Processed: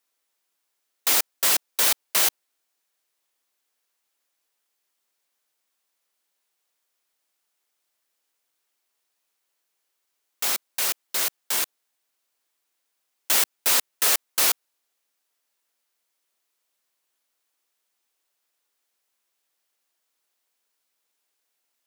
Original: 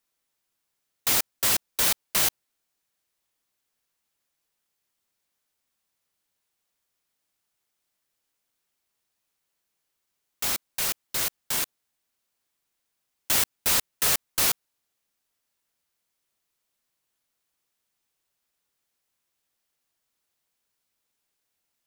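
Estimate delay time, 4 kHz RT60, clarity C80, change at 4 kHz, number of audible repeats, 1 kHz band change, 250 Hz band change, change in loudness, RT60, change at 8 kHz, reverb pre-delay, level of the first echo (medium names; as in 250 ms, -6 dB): no echo, no reverb, no reverb, +2.5 dB, no echo, +2.5 dB, -3.0 dB, +2.5 dB, no reverb, +2.5 dB, no reverb, no echo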